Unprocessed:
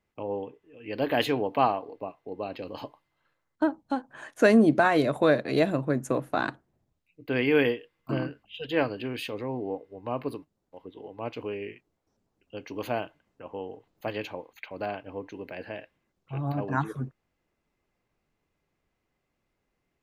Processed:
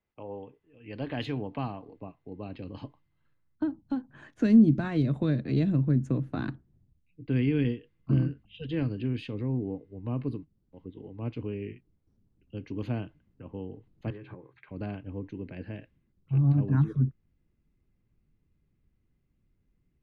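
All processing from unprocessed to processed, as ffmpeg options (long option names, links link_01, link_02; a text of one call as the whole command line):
ffmpeg -i in.wav -filter_complex "[0:a]asettb=1/sr,asplit=3[link_01][link_02][link_03];[link_01]atrim=end=14.104[link_04];[link_02]atrim=start=14.1:end=14.69,asetpts=PTS-STARTPTS,afade=type=in:duration=0.004:curve=qsin,afade=type=out:start_time=0.586:duration=0.004:curve=qsin,acompressor=threshold=-40dB:ratio=10:attack=3.2:release=140:knee=1:detection=peak,highpass=110,equalizer=frequency=130:width_type=q:width=4:gain=10,equalizer=frequency=230:width_type=q:width=4:gain=-9,equalizer=frequency=380:width_type=q:width=4:gain=8,equalizer=frequency=1100:width_type=q:width=4:gain=8,equalizer=frequency=1600:width_type=q:width=4:gain=7,equalizer=frequency=2900:width_type=q:width=4:gain=-8,lowpass=frequency=3600:width=0.5412,lowpass=frequency=3600:width=1.3066,asplit=2[link_05][link_06];[link_06]adelay=15,volume=-11.5dB[link_07];[link_05][link_07]amix=inputs=2:normalize=0,atrim=end_sample=26019[link_08];[link_03]atrim=start=14.686[link_09];[link_04][link_08]acrossfade=duration=0.004:curve1=hsin:curve2=qsin[link_10];[link_10][link_09]acrossfade=duration=0.004:curve1=qsin:curve2=hsin,lowpass=4500,asubboost=boost=9.5:cutoff=220,acrossover=split=290|3000[link_11][link_12][link_13];[link_12]acompressor=threshold=-27dB:ratio=4[link_14];[link_11][link_14][link_13]amix=inputs=3:normalize=0,volume=-7dB" out.wav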